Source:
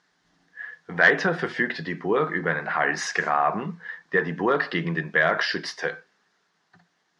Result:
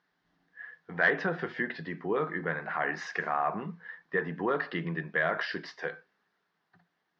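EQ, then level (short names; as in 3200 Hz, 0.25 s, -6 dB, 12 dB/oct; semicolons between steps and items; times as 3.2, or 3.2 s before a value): air absorption 180 m; -6.5 dB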